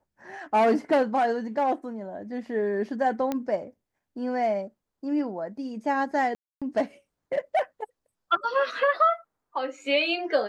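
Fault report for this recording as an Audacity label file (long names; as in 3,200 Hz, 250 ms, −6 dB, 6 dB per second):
3.320000	3.320000	click −15 dBFS
6.350000	6.620000	drop-out 266 ms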